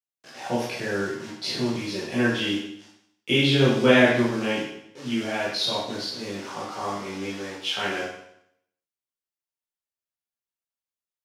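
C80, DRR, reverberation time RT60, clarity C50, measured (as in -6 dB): 4.5 dB, -9.0 dB, 0.75 s, 1.5 dB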